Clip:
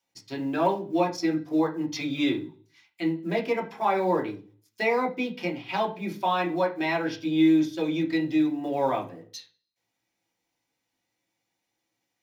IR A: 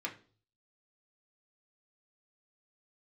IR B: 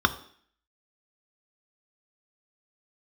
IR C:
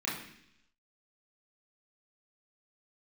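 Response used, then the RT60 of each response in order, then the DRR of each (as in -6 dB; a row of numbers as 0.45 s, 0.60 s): A; 0.40 s, 0.55 s, 0.70 s; -1.5 dB, 8.0 dB, -7.0 dB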